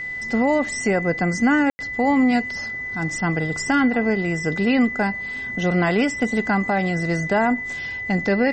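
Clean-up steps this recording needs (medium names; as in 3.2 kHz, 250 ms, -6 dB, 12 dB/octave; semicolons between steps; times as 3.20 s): band-stop 2 kHz, Q 30; room tone fill 1.70–1.79 s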